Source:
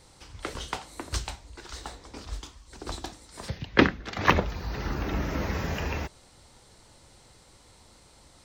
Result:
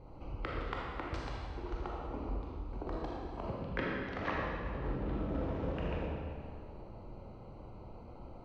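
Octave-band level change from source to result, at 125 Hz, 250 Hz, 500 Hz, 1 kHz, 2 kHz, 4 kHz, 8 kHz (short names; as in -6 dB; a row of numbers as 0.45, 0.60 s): -6.5 dB, -8.5 dB, -6.0 dB, -9.0 dB, -12.0 dB, -16.0 dB, under -25 dB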